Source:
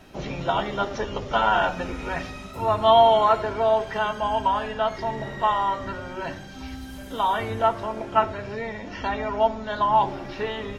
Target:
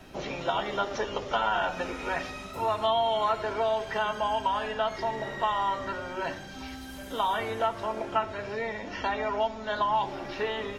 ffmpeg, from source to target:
-filter_complex "[0:a]acrossover=split=300|1800[a][b][c];[a]acompressor=threshold=-45dB:ratio=4[d];[b]acompressor=threshold=-26dB:ratio=4[e];[c]acompressor=threshold=-35dB:ratio=4[f];[d][e][f]amix=inputs=3:normalize=0"

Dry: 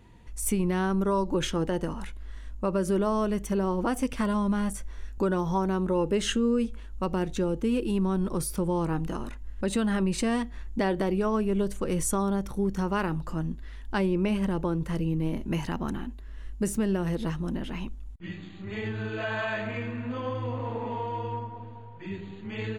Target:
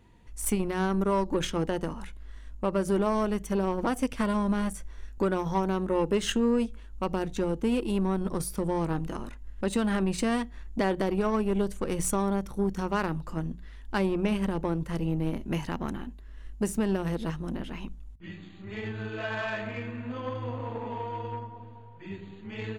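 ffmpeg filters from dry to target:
-af "bandreject=f=60:t=h:w=6,bandreject=f=120:t=h:w=6,bandreject=f=180:t=h:w=6,aeval=exprs='0.2*(cos(1*acos(clip(val(0)/0.2,-1,1)))-cos(1*PI/2))+0.01*(cos(7*acos(clip(val(0)/0.2,-1,1)))-cos(7*PI/2))':c=same"

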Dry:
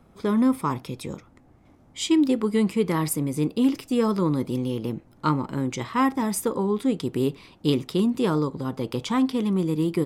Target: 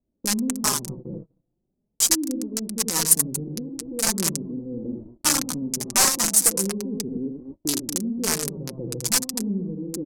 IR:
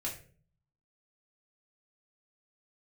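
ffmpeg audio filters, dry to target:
-filter_complex "[0:a]aeval=exprs='val(0)+0.5*0.0188*sgn(val(0))':c=same,aecho=1:1:81.63|230.3:0.562|0.355,acrossover=split=570[a][b];[a]alimiter=limit=-18.5dB:level=0:latency=1:release=318[c];[b]acrusher=bits=3:mix=0:aa=0.000001[d];[c][d]amix=inputs=2:normalize=0,aeval=exprs='(mod(4.22*val(0)+1,2)-1)/4.22':c=same,lowpass=9.8k,aexciter=amount=5.7:drive=7.5:freq=4.8k,agate=range=-34dB:threshold=-32dB:ratio=16:detection=peak,flanger=delay=3:depth=3.3:regen=13:speed=0.39:shape=triangular"

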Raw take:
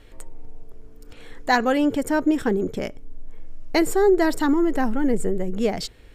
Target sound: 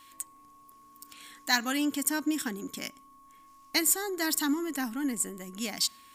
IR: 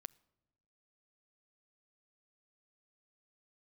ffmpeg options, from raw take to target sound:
-filter_complex "[0:a]aderivative,acontrast=38,lowshelf=f=350:t=q:w=3:g=7,aeval=exprs='val(0)+0.00158*sin(2*PI*1100*n/s)':c=same,asplit=2[a][b];[1:a]atrim=start_sample=2205[c];[b][c]afir=irnorm=-1:irlink=0,volume=6dB[d];[a][d]amix=inputs=2:normalize=0,volume=-4dB"

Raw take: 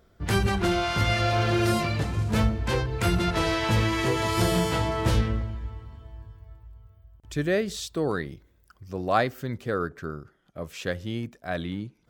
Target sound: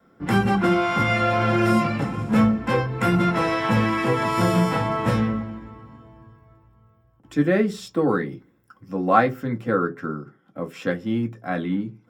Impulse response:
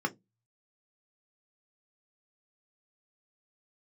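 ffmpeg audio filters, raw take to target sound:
-filter_complex "[0:a]adynamicequalizer=threshold=0.00794:dfrequency=330:dqfactor=2.6:tfrequency=330:tqfactor=2.6:attack=5:release=100:ratio=0.375:range=3.5:mode=cutabove:tftype=bell[a];[1:a]atrim=start_sample=2205[b];[a][b]afir=irnorm=-1:irlink=0,volume=-2dB"

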